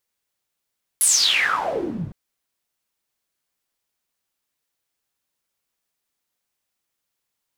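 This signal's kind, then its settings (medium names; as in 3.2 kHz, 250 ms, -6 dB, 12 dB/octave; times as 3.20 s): swept filtered noise pink, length 1.11 s bandpass, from 11 kHz, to 110 Hz, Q 11, exponential, gain ramp -13.5 dB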